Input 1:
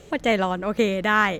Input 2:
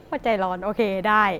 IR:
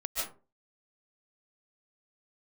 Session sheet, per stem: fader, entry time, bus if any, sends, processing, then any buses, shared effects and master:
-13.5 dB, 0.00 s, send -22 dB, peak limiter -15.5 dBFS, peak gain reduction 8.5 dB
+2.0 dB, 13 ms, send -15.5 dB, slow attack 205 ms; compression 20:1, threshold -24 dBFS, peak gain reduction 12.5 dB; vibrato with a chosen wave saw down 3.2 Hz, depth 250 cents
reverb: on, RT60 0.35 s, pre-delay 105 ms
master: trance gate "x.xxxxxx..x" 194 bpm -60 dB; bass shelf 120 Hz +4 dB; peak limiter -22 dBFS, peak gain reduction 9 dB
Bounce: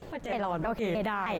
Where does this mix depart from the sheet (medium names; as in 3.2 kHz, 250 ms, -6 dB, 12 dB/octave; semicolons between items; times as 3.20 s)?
stem 2: send off; master: missing trance gate "x.xxxxxx..x" 194 bpm -60 dB